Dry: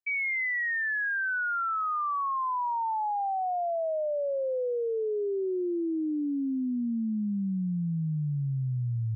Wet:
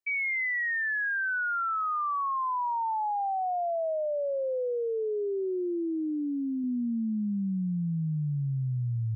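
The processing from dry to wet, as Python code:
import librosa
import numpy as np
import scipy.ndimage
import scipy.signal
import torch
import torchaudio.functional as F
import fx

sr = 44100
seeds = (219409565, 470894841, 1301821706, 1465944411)

y = fx.low_shelf(x, sr, hz=120.0, db=-7.5, at=(3.93, 6.64))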